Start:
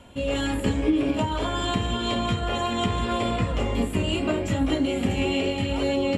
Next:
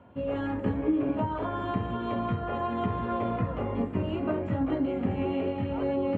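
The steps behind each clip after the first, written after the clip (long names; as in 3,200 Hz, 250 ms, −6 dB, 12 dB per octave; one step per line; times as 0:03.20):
Chebyshev band-pass filter 100–1,300 Hz, order 2
level −3 dB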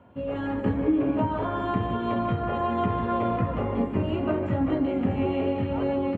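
automatic gain control gain up to 3 dB
single-tap delay 149 ms −10.5 dB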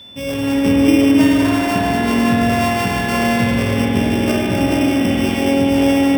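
samples sorted by size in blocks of 16 samples
spring reverb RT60 3.8 s, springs 47 ms, chirp 55 ms, DRR −3 dB
steady tone 3,500 Hz −41 dBFS
level +4 dB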